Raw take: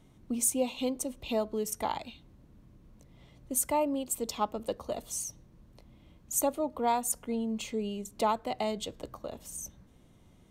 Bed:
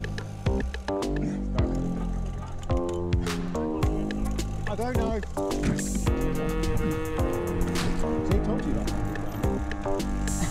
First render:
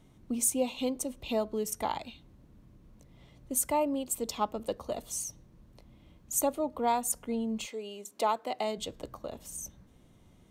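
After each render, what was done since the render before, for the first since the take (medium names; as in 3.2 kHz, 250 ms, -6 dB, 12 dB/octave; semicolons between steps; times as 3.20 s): 7.65–8.77 s: high-pass 520 Hz -> 230 Hz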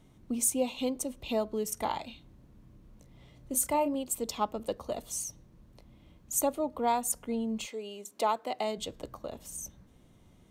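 1.74–3.95 s: doubling 31 ms -10 dB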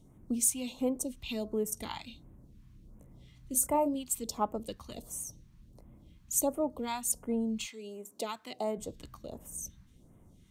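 phase shifter stages 2, 1.4 Hz, lowest notch 470–4300 Hz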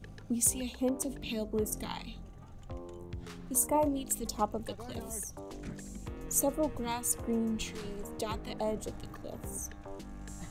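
add bed -17 dB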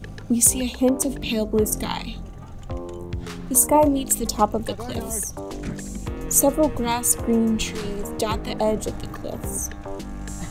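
trim +12 dB; peak limiter -3 dBFS, peak gain reduction 2 dB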